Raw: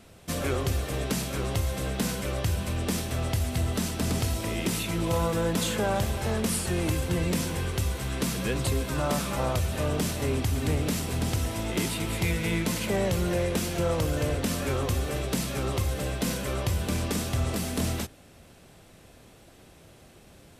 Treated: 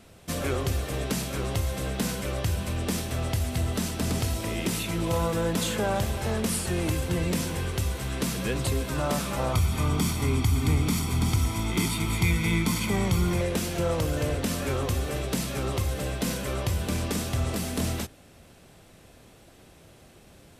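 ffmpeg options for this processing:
-filter_complex "[0:a]asettb=1/sr,asplit=3[a][b][c];[a]atrim=end=9.534[d];[b]atrim=start=9.53:end=13.41,asetpts=PTS-STARTPTS,afade=t=in:d=0.004:c=qsin,afade=t=out:st=3.876:d=0.004:c=qsin,aecho=1:1:0.9:0.68,atrim=end_sample=171108[e];[c]atrim=start=13.406[f];[d][e]acrossfade=d=0.004:c1=hsin:c2=qsin[g];[g][f]acrossfade=d=0.004:c1=qsin:c2=hsin"

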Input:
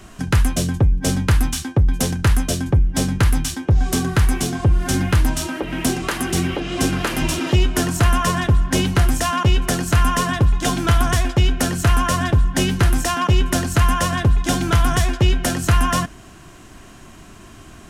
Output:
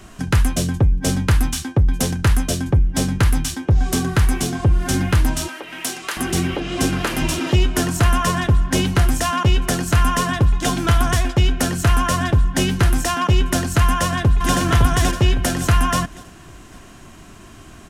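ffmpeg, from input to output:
-filter_complex "[0:a]asettb=1/sr,asplit=3[a][b][c];[a]atrim=end=5.484[d];[b]atrim=start=5.48:end=6.17,asetpts=PTS-STARTPTS,afade=t=in:d=0.004:c=qsin,afade=t=out:st=0.686:d=0.004:c=qsin,highpass=f=1.3k:p=1[e];[c]atrim=start=6.166[f];[d][e]acrossfade=d=0.004:c1=hsin:c2=qsin[g];[g][f]acrossfade=d=0.004:c1=qsin:c2=hsin,asplit=2[h][i];[i]afade=t=in:st=13.84:d=0.01,afade=t=out:st=14.55:d=0.01,aecho=0:1:560|1120|1680|2240|2800:0.707946|0.247781|0.0867234|0.0303532|0.0106236[j];[h][j]amix=inputs=2:normalize=0"

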